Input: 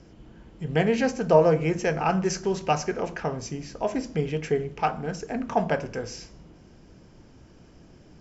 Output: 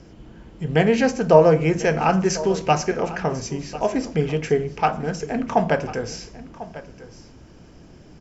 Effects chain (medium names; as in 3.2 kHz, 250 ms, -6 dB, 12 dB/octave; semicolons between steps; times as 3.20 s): delay 1046 ms -16.5 dB; trim +5 dB